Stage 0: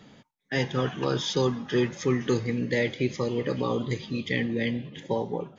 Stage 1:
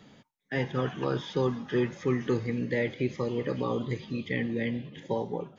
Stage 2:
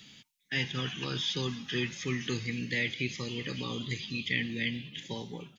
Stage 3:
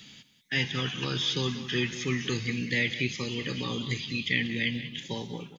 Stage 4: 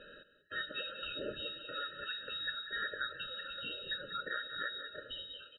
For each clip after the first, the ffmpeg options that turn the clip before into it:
-filter_complex "[0:a]acrossover=split=2800[a][b];[b]acompressor=threshold=-50dB:ratio=4:attack=1:release=60[c];[a][c]amix=inputs=2:normalize=0,volume=-2.5dB"
-af "firequalizer=gain_entry='entry(190,0);entry(550,-11);entry(2600,14)':delay=0.05:min_phase=1,volume=-3.5dB"
-af "aecho=1:1:188:0.211,volume=3.5dB"
-af "acompressor=threshold=-42dB:ratio=2,lowpass=f=3.3k:t=q:w=0.5098,lowpass=f=3.3k:t=q:w=0.6013,lowpass=f=3.3k:t=q:w=0.9,lowpass=f=3.3k:t=q:w=2.563,afreqshift=-3900,afftfilt=real='re*eq(mod(floor(b*sr/1024/630),2),0)':imag='im*eq(mod(floor(b*sr/1024/630),2),0)':win_size=1024:overlap=0.75,volume=4dB"

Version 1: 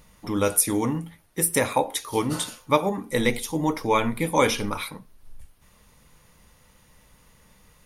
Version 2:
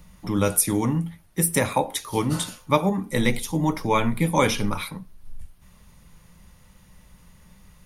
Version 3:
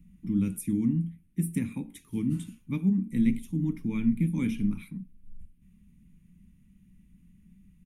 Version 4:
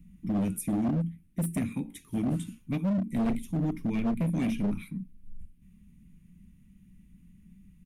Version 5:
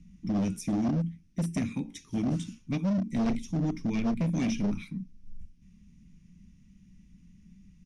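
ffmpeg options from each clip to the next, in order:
-filter_complex "[0:a]equalizer=f=180:w=5.8:g=9.5,bandreject=f=470:w=13,acrossover=split=130|4300[a][b][c];[a]acontrast=73[d];[d][b][c]amix=inputs=3:normalize=0"
-af "firequalizer=gain_entry='entry(120,0);entry(220,11);entry(570,-28);entry(2400,-6);entry(4500,-22);entry(7700,-11)':delay=0.05:min_phase=1,volume=-8dB"
-af "volume=26.5dB,asoftclip=hard,volume=-26.5dB,volume=2dB"
-af "lowpass=f=5.7k:t=q:w=5.3"

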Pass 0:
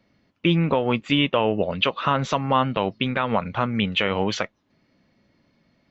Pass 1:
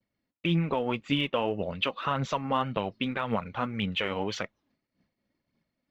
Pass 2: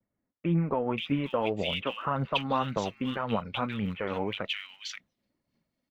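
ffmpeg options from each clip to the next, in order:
-af "aphaser=in_gain=1:out_gain=1:delay=4.3:decay=0.38:speed=1.8:type=triangular,agate=range=-33dB:threshold=-55dB:ratio=3:detection=peak,volume=-8dB"
-filter_complex "[0:a]acrossover=split=1900[a][b];[b]adelay=530[c];[a][c]amix=inputs=2:normalize=0"

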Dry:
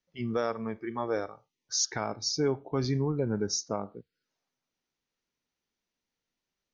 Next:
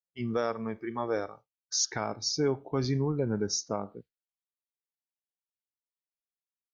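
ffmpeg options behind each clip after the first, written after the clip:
-af "agate=range=-33dB:threshold=-45dB:ratio=3:detection=peak"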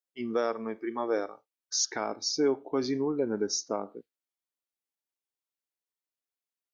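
-af "lowshelf=f=190:t=q:w=1.5:g=-13"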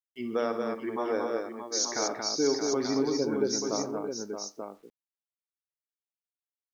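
-af "aecho=1:1:63|135|228|625|885:0.299|0.188|0.596|0.376|0.447,acrusher=bits=10:mix=0:aa=0.000001,volume=-1dB"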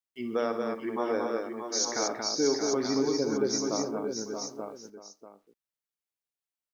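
-af "aecho=1:1:639:0.282"

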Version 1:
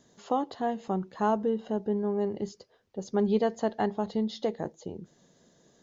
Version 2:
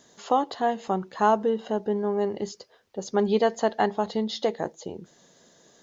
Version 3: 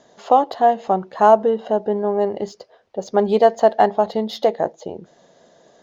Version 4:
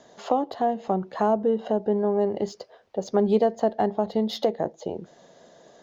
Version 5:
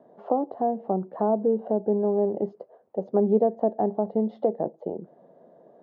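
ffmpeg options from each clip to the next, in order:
-af "lowshelf=f=360:g=-11,volume=8.5dB"
-af "adynamicsmooth=sensitivity=6:basefreq=5.6k,equalizer=f=650:t=o:w=0.88:g=9.5,volume=2.5dB"
-filter_complex "[0:a]acrossover=split=380[a][b];[b]acompressor=threshold=-28dB:ratio=3[c];[a][c]amix=inputs=2:normalize=0"
-af "asuperpass=centerf=340:order=4:qfactor=0.52"

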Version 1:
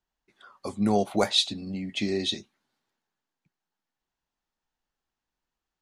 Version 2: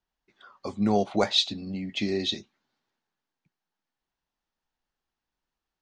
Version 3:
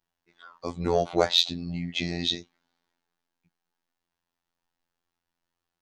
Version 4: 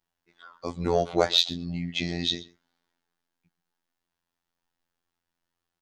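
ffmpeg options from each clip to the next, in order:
-af "lowpass=f=6.4k:w=0.5412,lowpass=f=6.4k:w=1.3066"
-af "acontrast=79,afftfilt=real='hypot(re,im)*cos(PI*b)':imag='0':win_size=2048:overlap=0.75,volume=-2dB"
-filter_complex "[0:a]asplit=2[a][b];[b]adelay=128.3,volume=-20dB,highshelf=f=4k:g=-2.89[c];[a][c]amix=inputs=2:normalize=0"

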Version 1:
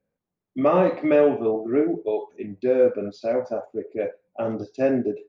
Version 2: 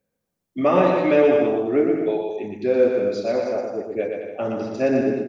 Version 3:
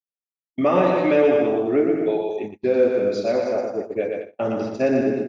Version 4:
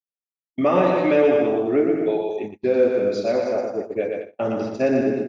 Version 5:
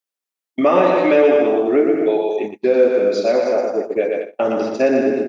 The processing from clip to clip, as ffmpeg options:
-af "highshelf=f=3k:g=9.5,aecho=1:1:120|210|277.5|328.1|366.1:0.631|0.398|0.251|0.158|0.1"
-filter_complex "[0:a]agate=range=-39dB:threshold=-29dB:ratio=16:detection=peak,asplit=2[a][b];[b]alimiter=limit=-15dB:level=0:latency=1:release=230,volume=-1.5dB[c];[a][c]amix=inputs=2:normalize=0,volume=-3.5dB"
-af anull
-filter_complex "[0:a]highpass=260,asplit=2[a][b];[b]acompressor=threshold=-26dB:ratio=6,volume=-0.5dB[c];[a][c]amix=inputs=2:normalize=0,volume=2.5dB"

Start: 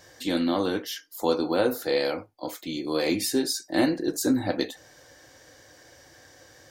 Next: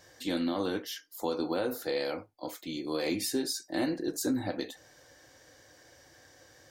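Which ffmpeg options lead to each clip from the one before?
-af "alimiter=limit=-15.5dB:level=0:latency=1:release=82,volume=-5dB"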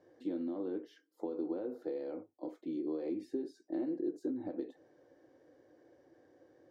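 -af "acompressor=threshold=-34dB:ratio=6,bandpass=f=350:t=q:w=2.1:csg=0,volume=3.5dB"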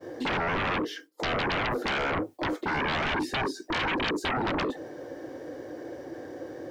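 -af "aeval=exprs='0.0562*sin(PI/2*10*val(0)/0.0562)':c=same,agate=range=-33dB:threshold=-41dB:ratio=3:detection=peak"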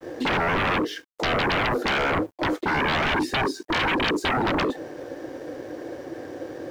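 -af "aeval=exprs='sgn(val(0))*max(abs(val(0))-0.00188,0)':c=same,volume=5.5dB"

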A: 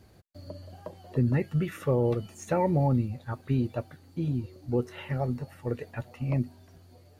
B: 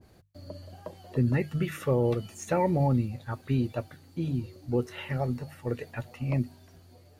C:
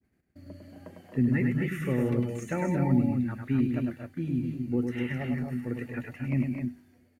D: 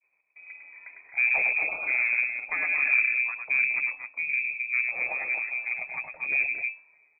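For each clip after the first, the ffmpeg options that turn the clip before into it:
-af "bandreject=f=50:t=h:w=6,bandreject=f=100:t=h:w=6,bandreject=f=150:t=h:w=6,adynamicequalizer=threshold=0.00447:dfrequency=1600:dqfactor=0.7:tfrequency=1600:tqfactor=0.7:attack=5:release=100:ratio=0.375:range=2:mode=boostabove:tftype=highshelf"
-af "agate=range=-33dB:threshold=-48dB:ratio=3:detection=peak,equalizer=f=250:t=o:w=1:g=10,equalizer=f=500:t=o:w=1:g=-4,equalizer=f=1k:t=o:w=1:g=-5,equalizer=f=2k:t=o:w=1:g=11,equalizer=f=4k:t=o:w=1:g=-9,aecho=1:1:102|227.4|259.5:0.562|0.316|0.501,volume=-5.5dB"
-af "aeval=exprs='0.266*(cos(1*acos(clip(val(0)/0.266,-1,1)))-cos(1*PI/2))+0.0188*(cos(8*acos(clip(val(0)/0.266,-1,1)))-cos(8*PI/2))':c=same,lowpass=f=2.2k:t=q:w=0.5098,lowpass=f=2.2k:t=q:w=0.6013,lowpass=f=2.2k:t=q:w=0.9,lowpass=f=2.2k:t=q:w=2.563,afreqshift=-2600"

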